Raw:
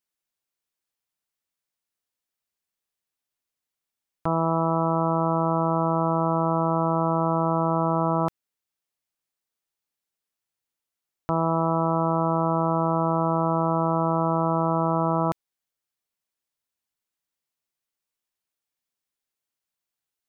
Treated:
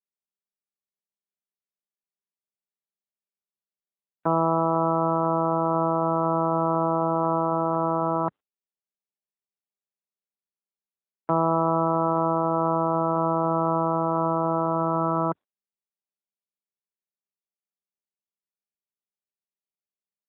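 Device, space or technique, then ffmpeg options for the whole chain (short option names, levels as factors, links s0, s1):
mobile call with aggressive noise cancelling: -af "highpass=f=170:w=0.5412,highpass=f=170:w=1.3066,afftdn=nr=28:nf=-45,volume=1.41" -ar 8000 -c:a libopencore_amrnb -b:a 12200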